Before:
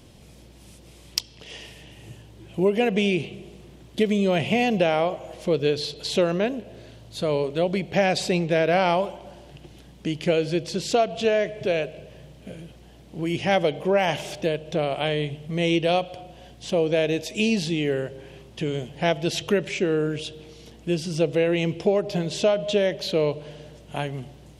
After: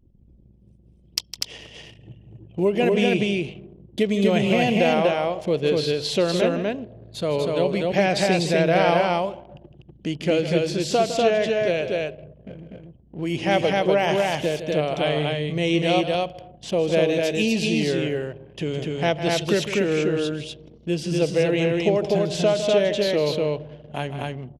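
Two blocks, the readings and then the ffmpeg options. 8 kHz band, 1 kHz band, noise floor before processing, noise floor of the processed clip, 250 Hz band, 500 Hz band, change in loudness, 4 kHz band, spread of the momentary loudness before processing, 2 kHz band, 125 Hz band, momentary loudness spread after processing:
+2.0 dB, +2.5 dB, −49 dBFS, −53 dBFS, +2.5 dB, +2.5 dB, +2.0 dB, +2.5 dB, 17 LU, +2.5 dB, +2.5 dB, 13 LU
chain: -af "anlmdn=0.251,aecho=1:1:157.4|244.9:0.282|0.794"

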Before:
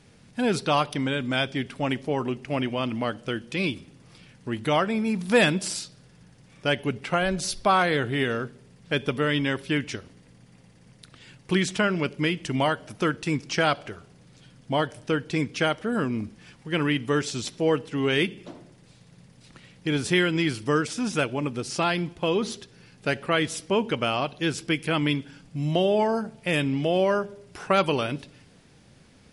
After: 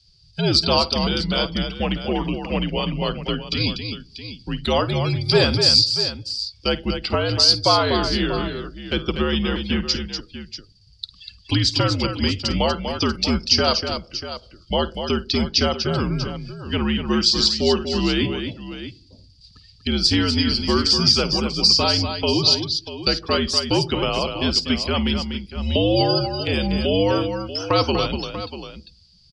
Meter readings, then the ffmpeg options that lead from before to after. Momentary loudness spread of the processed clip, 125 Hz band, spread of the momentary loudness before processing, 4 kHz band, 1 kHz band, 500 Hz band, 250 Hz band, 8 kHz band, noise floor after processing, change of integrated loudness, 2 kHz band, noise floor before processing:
15 LU, +6.0 dB, 10 LU, +13.0 dB, +2.0 dB, +3.0 dB, +4.0 dB, +6.0 dB, −52 dBFS, +6.0 dB, −1.0 dB, −55 dBFS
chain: -filter_complex "[0:a]afftdn=noise_reduction=25:noise_floor=-41,highpass=frequency=78:width=0.5412,highpass=frequency=78:width=1.3066,acrossover=split=410|1600[link_01][link_02][link_03];[link_03]acompressor=threshold=-48dB:ratio=5[link_04];[link_01][link_02][link_04]amix=inputs=3:normalize=0,aexciter=amount=8.2:drive=0.8:freq=2900,lowpass=frequency=4800:width_type=q:width=15,afreqshift=-77,aecho=1:1:52|243|640:0.15|0.422|0.237,volume=3dB"

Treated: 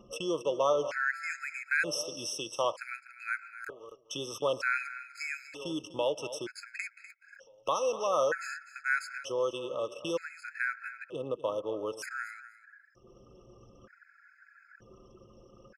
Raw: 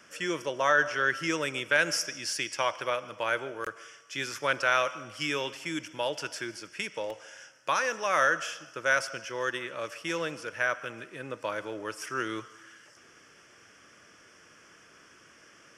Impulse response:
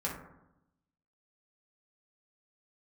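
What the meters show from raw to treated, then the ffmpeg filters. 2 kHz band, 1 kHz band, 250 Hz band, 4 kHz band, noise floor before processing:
−5.0 dB, −5.0 dB, −3.5 dB, −5.5 dB, −57 dBFS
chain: -af "anlmdn=0.1,equalizer=frequency=490:width_type=o:width=0.63:gain=8.5,acompressor=mode=upward:threshold=-26dB:ratio=2.5,aecho=1:1:248|496:0.2|0.0319,afftfilt=real='re*gt(sin(2*PI*0.54*pts/sr)*(1-2*mod(floor(b*sr/1024/1300),2)),0)':imag='im*gt(sin(2*PI*0.54*pts/sr)*(1-2*mod(floor(b*sr/1024/1300),2)),0)':win_size=1024:overlap=0.75,volume=-3.5dB"

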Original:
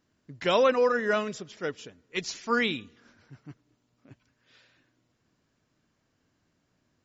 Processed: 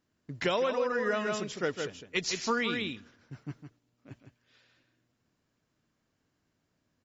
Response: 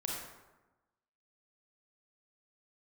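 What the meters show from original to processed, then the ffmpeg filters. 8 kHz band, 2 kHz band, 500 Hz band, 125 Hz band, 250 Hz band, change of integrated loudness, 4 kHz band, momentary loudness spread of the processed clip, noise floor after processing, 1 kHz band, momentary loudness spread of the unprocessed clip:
can't be measured, −2.5 dB, −4.5 dB, +1.5 dB, −2.0 dB, −4.0 dB, −1.5 dB, 17 LU, −79 dBFS, −4.5 dB, 14 LU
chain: -af "agate=range=-9dB:threshold=-56dB:ratio=16:detection=peak,aecho=1:1:158:0.422,acompressor=threshold=-30dB:ratio=8,volume=4dB"

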